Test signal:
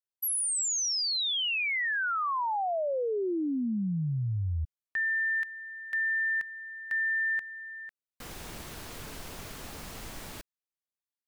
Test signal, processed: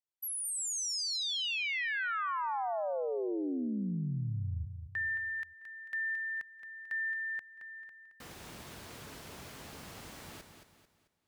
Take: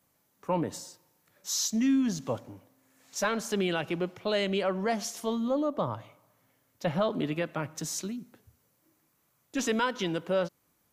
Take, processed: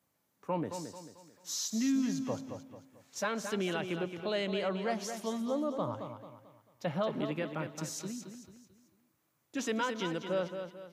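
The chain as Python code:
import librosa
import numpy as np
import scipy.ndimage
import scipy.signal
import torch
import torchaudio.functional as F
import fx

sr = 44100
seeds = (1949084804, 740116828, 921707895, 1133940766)

p1 = scipy.signal.sosfilt(scipy.signal.butter(2, 68.0, 'highpass', fs=sr, output='sos'), x)
p2 = fx.high_shelf(p1, sr, hz=8000.0, db=-4.0)
p3 = p2 + fx.echo_feedback(p2, sr, ms=221, feedback_pct=39, wet_db=-8.0, dry=0)
y = F.gain(torch.from_numpy(p3), -5.0).numpy()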